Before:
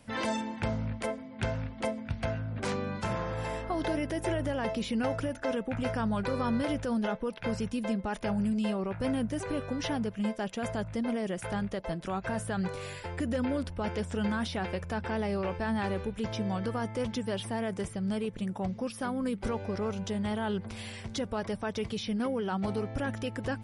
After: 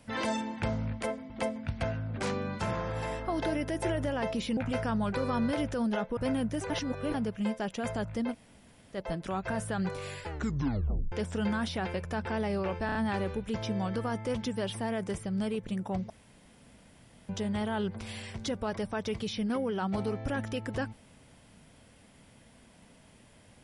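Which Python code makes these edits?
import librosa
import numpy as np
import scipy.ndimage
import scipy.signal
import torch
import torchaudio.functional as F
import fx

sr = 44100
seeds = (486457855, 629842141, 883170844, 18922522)

y = fx.edit(x, sr, fx.cut(start_s=1.3, length_s=0.42),
    fx.cut(start_s=4.99, length_s=0.69),
    fx.cut(start_s=7.28, length_s=1.68),
    fx.reverse_span(start_s=9.49, length_s=0.44),
    fx.room_tone_fill(start_s=11.11, length_s=0.63, crossfade_s=0.06),
    fx.tape_stop(start_s=13.03, length_s=0.88),
    fx.stutter(start_s=15.65, slice_s=0.03, count=4),
    fx.room_tone_fill(start_s=18.8, length_s=1.19), tone=tone)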